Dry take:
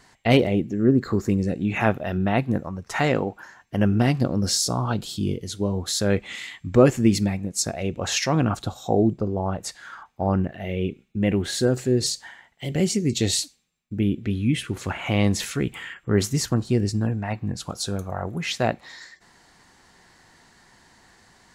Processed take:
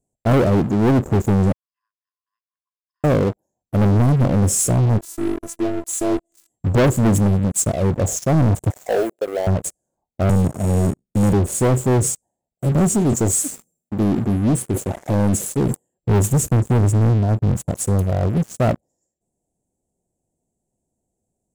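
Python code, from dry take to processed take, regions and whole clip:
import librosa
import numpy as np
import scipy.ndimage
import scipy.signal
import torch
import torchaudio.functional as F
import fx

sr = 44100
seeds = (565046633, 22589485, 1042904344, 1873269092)

y = fx.chain(x, sr, fx.backlash(play_db=-23.5),
    fx.brickwall_bandpass(low_hz=1000.0, high_hz=5200.0), at=(1.52, 3.04))
y = fx.chain(y, sr, fx.highpass(hz=220.0, slope=6),
    fx.robotise(hz=337.0), at=(4.98, 6.5))
y = fx.chain(y, sr, fx.law_mismatch(coded='mu'),
    fx.highpass(hz=480.0, slope=24), at=(8.7, 9.47))
y = fx.chain(y, sr, fx.sample_sort(block=32),
    fx.lowpass(hz=8300.0, slope=12),
    fx.band_squash(depth_pct=40), at=(10.29, 11.33))
y = fx.chain(y, sr, fx.highpass(hz=230.0, slope=6),
    fx.sustainer(db_per_s=87.0), at=(12.95, 15.98))
y = scipy.signal.sosfilt(scipy.signal.ellip(3, 1.0, 40, [630.0, 7600.0], 'bandstop', fs=sr, output='sos'), y)
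y = fx.dynamic_eq(y, sr, hz=100.0, q=0.92, threshold_db=-36.0, ratio=4.0, max_db=5)
y = fx.leveller(y, sr, passes=5)
y = y * 10.0 ** (-7.0 / 20.0)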